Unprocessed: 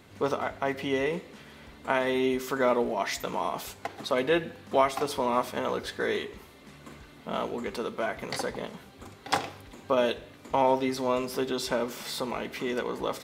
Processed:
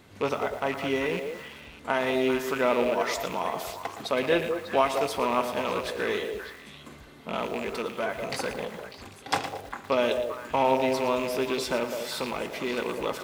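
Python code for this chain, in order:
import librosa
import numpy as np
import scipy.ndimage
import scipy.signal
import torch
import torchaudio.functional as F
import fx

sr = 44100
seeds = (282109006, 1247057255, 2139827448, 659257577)

y = fx.rattle_buzz(x, sr, strikes_db=-39.0, level_db=-25.0)
y = fx.echo_stepped(y, sr, ms=199, hz=510.0, octaves=1.4, feedback_pct=70, wet_db=-4.0)
y = fx.echo_crushed(y, sr, ms=115, feedback_pct=35, bits=7, wet_db=-11.0)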